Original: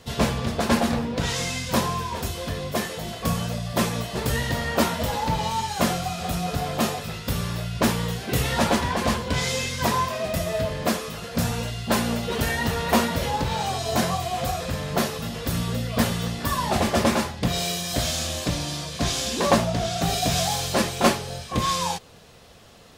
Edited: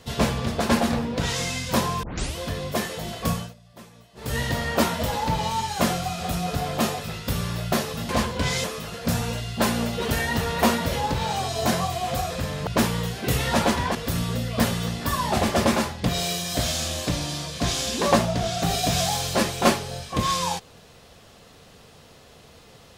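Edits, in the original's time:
0:02.03: tape start 0.33 s
0:03.30–0:04.40: duck −22.5 dB, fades 0.24 s
0:07.72–0:09.00: swap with 0:14.97–0:15.34
0:09.55–0:10.94: remove

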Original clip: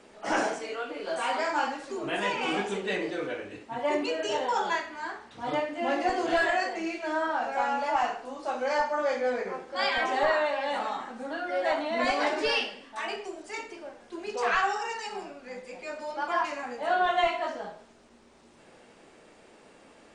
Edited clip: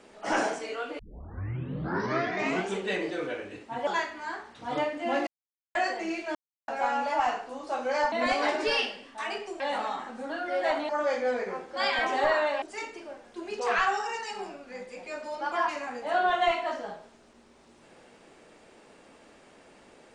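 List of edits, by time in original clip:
0:00.99: tape start 1.76 s
0:03.87–0:04.63: remove
0:06.03–0:06.51: silence
0:07.11–0:07.44: silence
0:08.88–0:10.61: swap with 0:11.90–0:13.38

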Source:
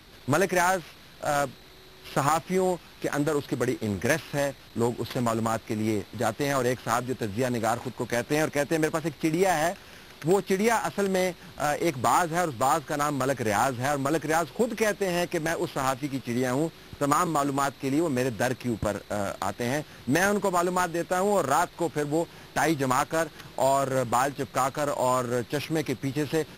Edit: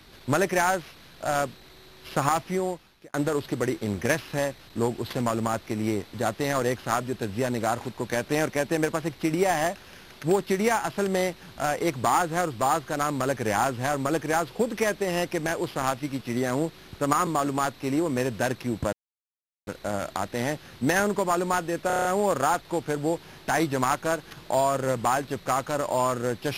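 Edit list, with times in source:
0:02.42–0:03.14: fade out
0:18.93: splice in silence 0.74 s
0:21.13: stutter 0.03 s, 7 plays

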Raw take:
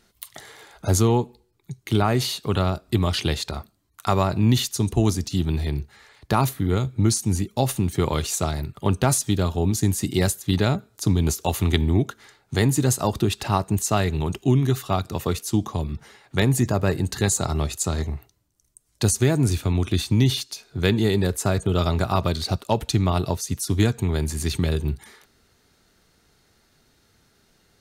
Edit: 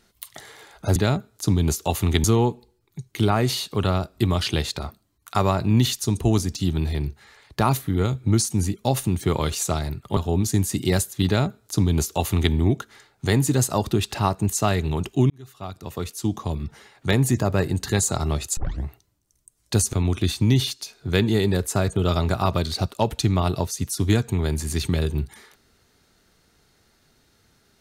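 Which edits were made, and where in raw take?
0:08.89–0:09.46: remove
0:10.55–0:11.83: duplicate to 0:00.96
0:14.59–0:15.90: fade in
0:17.86: tape start 0.28 s
0:19.22–0:19.63: remove

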